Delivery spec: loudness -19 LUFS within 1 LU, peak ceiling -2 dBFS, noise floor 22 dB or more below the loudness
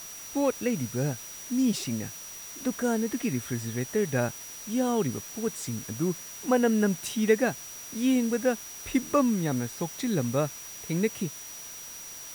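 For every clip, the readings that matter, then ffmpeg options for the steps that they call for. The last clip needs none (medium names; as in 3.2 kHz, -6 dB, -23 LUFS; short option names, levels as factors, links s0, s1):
steady tone 5.8 kHz; tone level -42 dBFS; noise floor -42 dBFS; noise floor target -51 dBFS; loudness -29.0 LUFS; peak level -10.0 dBFS; loudness target -19.0 LUFS
-> -af "bandreject=f=5800:w=30"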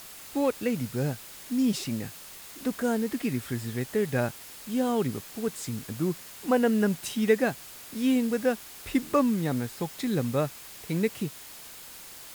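steady tone not found; noise floor -45 dBFS; noise floor target -51 dBFS
-> -af "afftdn=nr=6:nf=-45"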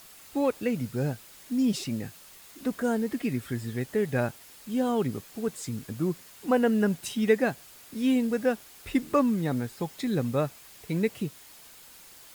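noise floor -51 dBFS; loudness -29.0 LUFS; peak level -10.0 dBFS; loudness target -19.0 LUFS
-> -af "volume=3.16,alimiter=limit=0.794:level=0:latency=1"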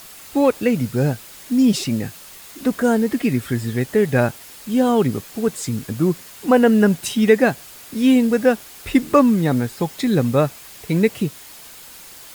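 loudness -19.0 LUFS; peak level -2.0 dBFS; noise floor -41 dBFS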